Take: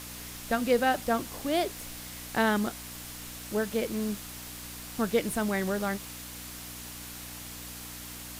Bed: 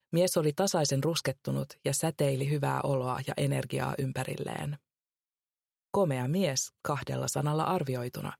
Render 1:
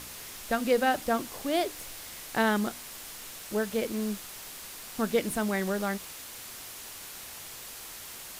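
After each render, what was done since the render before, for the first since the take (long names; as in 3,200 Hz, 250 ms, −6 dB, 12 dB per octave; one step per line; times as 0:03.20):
hum removal 60 Hz, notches 5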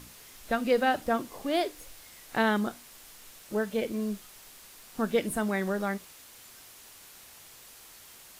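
noise reduction from a noise print 8 dB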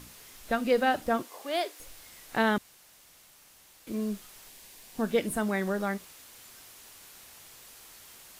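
0:01.22–0:01.80: high-pass filter 510 Hz
0:02.58–0:03.87: fill with room tone
0:04.49–0:05.05: parametric band 1,300 Hz −10 dB 0.3 octaves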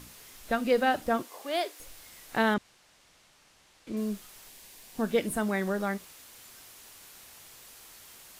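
0:02.54–0:03.97: high-frequency loss of the air 64 metres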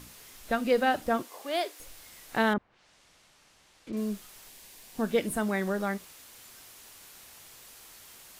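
0:02.53–0:03.93: treble cut that deepens with the level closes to 1,300 Hz, closed at −32.5 dBFS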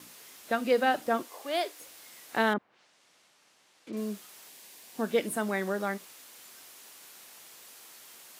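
downward expander −58 dBFS
high-pass filter 220 Hz 12 dB per octave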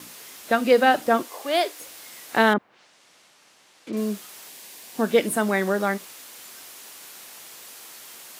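level +8 dB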